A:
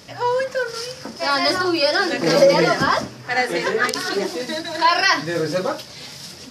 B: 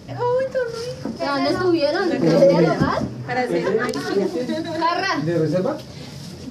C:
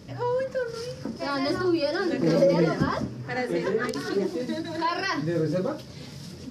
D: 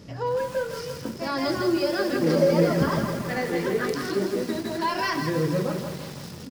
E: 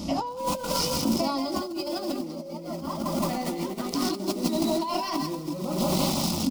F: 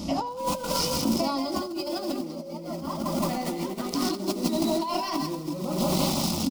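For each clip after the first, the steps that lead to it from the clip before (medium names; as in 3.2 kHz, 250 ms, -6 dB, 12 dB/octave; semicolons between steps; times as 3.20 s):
tilt shelf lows +8.5 dB, about 640 Hz; in parallel at -1 dB: compression, threshold -25 dBFS, peak gain reduction 16.5 dB; on the sum: trim -3 dB
peaking EQ 720 Hz -5 dB 0.48 oct; trim -5.5 dB
delay 160 ms -8.5 dB; bit-crushed delay 165 ms, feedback 80%, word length 6-bit, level -8.5 dB
compressor with a negative ratio -34 dBFS, ratio -1; static phaser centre 450 Hz, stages 6; trim +8.5 dB
delay 83 ms -19.5 dB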